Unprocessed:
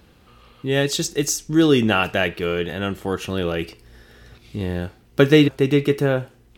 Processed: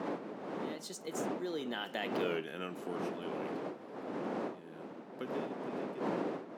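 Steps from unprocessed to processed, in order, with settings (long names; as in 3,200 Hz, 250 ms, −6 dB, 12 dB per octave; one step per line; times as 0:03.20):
source passing by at 0:02.30, 32 m/s, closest 2.5 metres
wind on the microphone 490 Hz −34 dBFS
high-pass filter 200 Hz 24 dB per octave
downward compressor 3 to 1, threshold −43 dBFS, peak gain reduction 17.5 dB
level +5.5 dB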